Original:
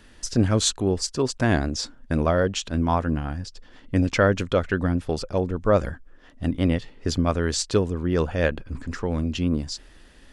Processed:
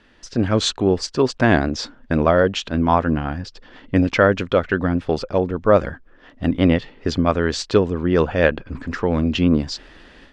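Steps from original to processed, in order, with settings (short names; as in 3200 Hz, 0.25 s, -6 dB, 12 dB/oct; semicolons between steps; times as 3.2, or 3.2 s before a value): low shelf 120 Hz -9.5 dB; AGC gain up to 10 dB; LPF 3800 Hz 12 dB/oct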